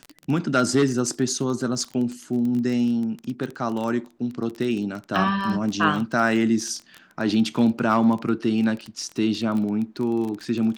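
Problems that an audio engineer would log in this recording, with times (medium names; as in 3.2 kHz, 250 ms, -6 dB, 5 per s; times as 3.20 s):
crackle 20 per s -27 dBFS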